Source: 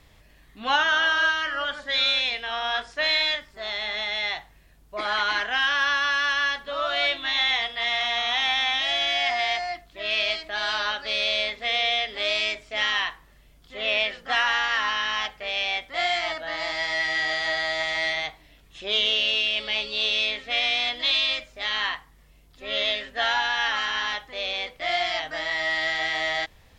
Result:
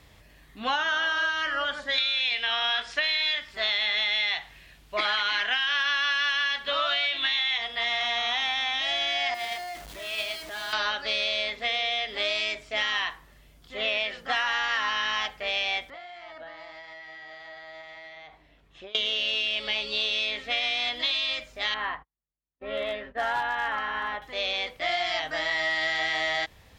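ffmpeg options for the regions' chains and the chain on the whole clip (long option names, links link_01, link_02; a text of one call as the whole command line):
ffmpeg -i in.wav -filter_complex "[0:a]asettb=1/sr,asplit=3[link_01][link_02][link_03];[link_01]atrim=end=1.984[link_04];[link_02]atrim=start=1.98:end=7.58,asetpts=PTS-STARTPTS,afade=type=in:duration=0.004:curve=qsin,afade=type=out:start_time=5.596:duration=0.004:curve=qsin,equalizer=frequency=2900:width=0.62:gain=12,acompressor=threshold=-14dB:ratio=6:attack=3.2:release=140:knee=1:detection=peak[link_05];[link_03]atrim=start=7.576[link_06];[link_04][link_05]acrossfade=duration=0.004:curve1=hsin:curve2=qsin[link_07];[link_07][link_06]acrossfade=duration=0.004:curve1=qsin:curve2=hsin,asettb=1/sr,asplit=3[link_08][link_09][link_10];[link_08]atrim=end=9.344[link_11];[link_09]atrim=start=9.34:end=10.73,asetpts=PTS-STARTPTS,afade=type=in:duration=0.004:curve=qsin,afade=type=out:start_time=1.386:duration=0.004:curve=qsin,aeval=exprs='val(0)+0.5*0.0473*sgn(val(0))':channel_layout=same,agate=range=-12dB:threshold=-21dB:ratio=16:release=100:detection=peak[link_12];[link_10]atrim=start=10.726[link_13];[link_11][link_12]acrossfade=duration=0.004:curve1=hsin:curve2=qsin[link_14];[link_14][link_13]acrossfade=duration=0.004:curve1=qsin:curve2=hsin,asettb=1/sr,asplit=3[link_15][link_16][link_17];[link_15]atrim=end=15.904[link_18];[link_16]atrim=start=15.9:end=18.95,asetpts=PTS-STARTPTS,afade=type=in:duration=0.004:curve=qsin,afade=type=out:start_time=3.046:duration=0.004:curve=qsin,lowshelf=frequency=450:gain=-6,acompressor=threshold=-36dB:ratio=16:attack=3.2:release=140:knee=1:detection=peak,lowpass=frequency=1100:poles=1[link_19];[link_17]atrim=start=18.946[link_20];[link_18][link_19]acrossfade=duration=0.004:curve1=hsin:curve2=qsin[link_21];[link_21][link_20]acrossfade=duration=0.004:curve1=qsin:curve2=hsin,asettb=1/sr,asplit=3[link_22][link_23][link_24];[link_22]atrim=end=21.744[link_25];[link_23]atrim=start=21.74:end=24.22,asetpts=PTS-STARTPTS,afade=type=in:duration=0.004:curve=qsin,afade=type=out:start_time=2.476:duration=0.004:curve=qsin,agate=range=-40dB:threshold=-48dB:ratio=16:release=100:detection=peak,lowpass=1400,volume=22.5dB,asoftclip=hard,volume=-22.5dB[link_26];[link_24]atrim=start=24.216[link_27];[link_25][link_26]acrossfade=duration=0.004:curve1=hsin:curve2=qsin[link_28];[link_28][link_27]acrossfade=duration=0.004:curve1=qsin:curve2=hsin,highpass=41,acompressor=threshold=-25dB:ratio=6,volume=1.5dB" out.wav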